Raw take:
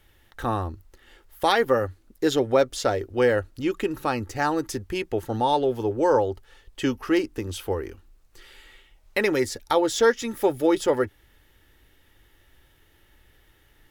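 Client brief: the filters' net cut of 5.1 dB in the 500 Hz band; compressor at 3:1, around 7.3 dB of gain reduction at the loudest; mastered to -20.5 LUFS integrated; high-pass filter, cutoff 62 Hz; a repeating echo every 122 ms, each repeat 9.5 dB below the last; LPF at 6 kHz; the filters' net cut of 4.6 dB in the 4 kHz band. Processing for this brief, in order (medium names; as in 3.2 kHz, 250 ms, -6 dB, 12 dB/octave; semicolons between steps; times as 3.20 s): high-pass 62 Hz; low-pass 6 kHz; peaking EQ 500 Hz -6 dB; peaking EQ 4 kHz -5 dB; compression 3:1, threshold -29 dBFS; feedback delay 122 ms, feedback 33%, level -9.5 dB; trim +12.5 dB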